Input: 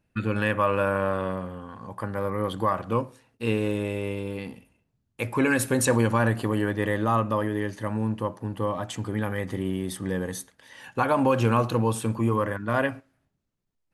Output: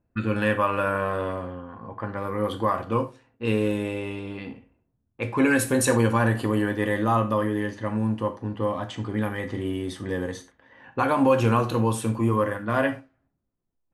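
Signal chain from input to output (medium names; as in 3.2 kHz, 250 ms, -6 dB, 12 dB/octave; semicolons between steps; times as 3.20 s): level-controlled noise filter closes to 1.1 kHz, open at -22.5 dBFS; gated-style reverb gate 120 ms falling, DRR 6 dB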